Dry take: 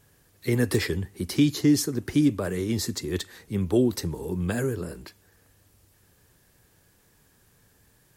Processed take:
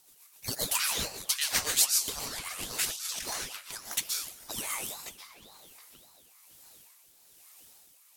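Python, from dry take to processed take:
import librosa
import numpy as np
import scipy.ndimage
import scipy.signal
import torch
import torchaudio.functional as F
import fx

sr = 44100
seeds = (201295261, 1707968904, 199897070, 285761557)

y = scipy.signal.sosfilt(scipy.signal.butter(4, 1100.0, 'highpass', fs=sr, output='sos'), x)
y = fx.tilt_eq(y, sr, slope=3.5)
y = fx.echo_wet_lowpass(y, sr, ms=722, feedback_pct=34, hz=3000.0, wet_db=-12.0)
y = fx.rev_plate(y, sr, seeds[0], rt60_s=1.0, hf_ratio=0.55, predelay_ms=110, drr_db=0.0)
y = fx.rotary_switch(y, sr, hz=7.5, then_hz=1.1, switch_at_s=3.47)
y = fx.over_compress(y, sr, threshold_db=-34.0, ratio=-1.0, at=(2.85, 3.53))
y = fx.ring_lfo(y, sr, carrier_hz=1500.0, swing_pct=70, hz=1.8)
y = y * librosa.db_to_amplitude(1.0)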